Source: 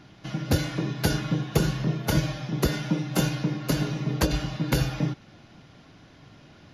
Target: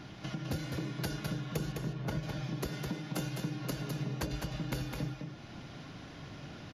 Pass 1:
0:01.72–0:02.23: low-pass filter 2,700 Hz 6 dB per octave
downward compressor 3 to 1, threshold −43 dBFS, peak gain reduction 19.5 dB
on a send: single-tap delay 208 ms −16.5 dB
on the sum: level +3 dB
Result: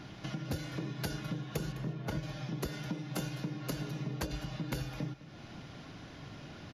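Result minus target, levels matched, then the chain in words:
echo-to-direct −11.5 dB
0:01.72–0:02.23: low-pass filter 2,700 Hz 6 dB per octave
downward compressor 3 to 1, threshold −43 dBFS, peak gain reduction 19.5 dB
on a send: single-tap delay 208 ms −5 dB
on the sum: level +3 dB

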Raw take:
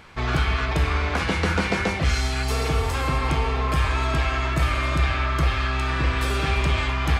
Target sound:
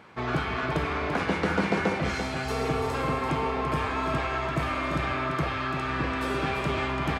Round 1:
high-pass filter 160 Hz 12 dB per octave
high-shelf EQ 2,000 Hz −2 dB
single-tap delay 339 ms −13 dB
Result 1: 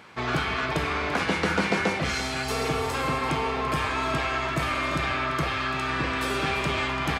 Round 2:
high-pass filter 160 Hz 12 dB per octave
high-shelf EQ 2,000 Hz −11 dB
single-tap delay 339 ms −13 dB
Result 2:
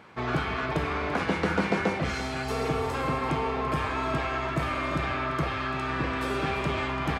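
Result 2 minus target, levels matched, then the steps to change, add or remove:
echo-to-direct −6 dB
change: single-tap delay 339 ms −7 dB

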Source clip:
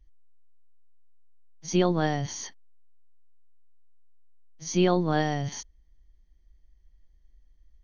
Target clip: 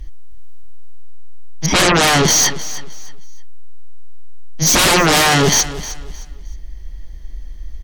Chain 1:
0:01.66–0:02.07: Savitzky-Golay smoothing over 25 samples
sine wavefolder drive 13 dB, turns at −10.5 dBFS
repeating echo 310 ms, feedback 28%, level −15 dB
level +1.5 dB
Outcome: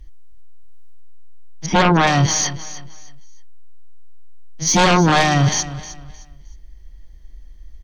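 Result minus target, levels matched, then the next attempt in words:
sine wavefolder: distortion −7 dB
0:01.66–0:02.07: Savitzky-Golay smoothing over 25 samples
sine wavefolder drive 23 dB, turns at −10.5 dBFS
repeating echo 310 ms, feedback 28%, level −15 dB
level +1.5 dB

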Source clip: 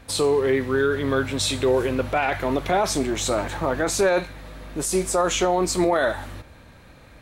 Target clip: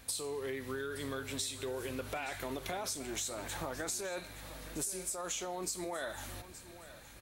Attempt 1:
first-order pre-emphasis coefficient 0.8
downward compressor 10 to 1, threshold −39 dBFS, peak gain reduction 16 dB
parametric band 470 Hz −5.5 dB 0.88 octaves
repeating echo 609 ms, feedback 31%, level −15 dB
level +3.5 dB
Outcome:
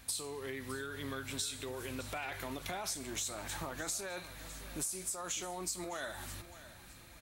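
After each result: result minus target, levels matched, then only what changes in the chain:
echo 262 ms early; 500 Hz band −3.0 dB
change: repeating echo 871 ms, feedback 31%, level −15 dB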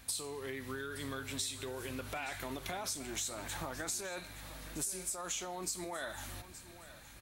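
500 Hz band −3.0 dB
remove: parametric band 470 Hz −5.5 dB 0.88 octaves

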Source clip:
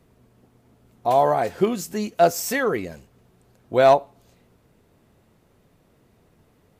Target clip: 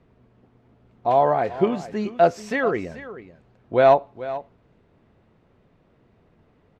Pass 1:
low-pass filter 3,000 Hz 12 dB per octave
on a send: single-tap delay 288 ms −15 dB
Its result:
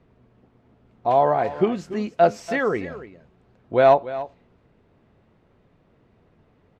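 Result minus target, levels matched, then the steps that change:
echo 147 ms early
change: single-tap delay 435 ms −15 dB

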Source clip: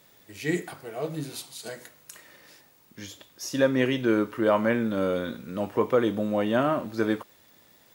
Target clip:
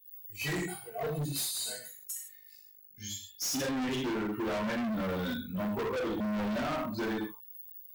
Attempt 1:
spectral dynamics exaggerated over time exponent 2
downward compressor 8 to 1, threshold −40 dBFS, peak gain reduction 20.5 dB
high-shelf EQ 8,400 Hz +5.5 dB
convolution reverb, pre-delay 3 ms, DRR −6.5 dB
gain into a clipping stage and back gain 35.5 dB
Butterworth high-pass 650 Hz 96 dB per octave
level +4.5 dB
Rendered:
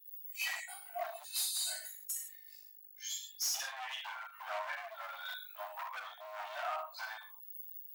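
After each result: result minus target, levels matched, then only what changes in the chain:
500 Hz band −7.0 dB; downward compressor: peak gain reduction +6.5 dB
remove: Butterworth high-pass 650 Hz 96 dB per octave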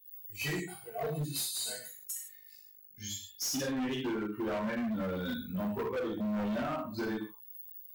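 downward compressor: peak gain reduction +6.5 dB
change: downward compressor 8 to 1, threshold −32.5 dBFS, peak gain reduction 14 dB

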